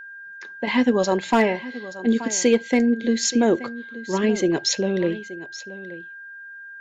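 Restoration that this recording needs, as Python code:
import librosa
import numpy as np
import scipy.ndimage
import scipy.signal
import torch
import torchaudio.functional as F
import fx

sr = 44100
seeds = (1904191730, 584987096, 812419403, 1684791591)

y = fx.fix_declip(x, sr, threshold_db=-8.5)
y = fx.notch(y, sr, hz=1600.0, q=30.0)
y = fx.fix_echo_inverse(y, sr, delay_ms=877, level_db=-16.0)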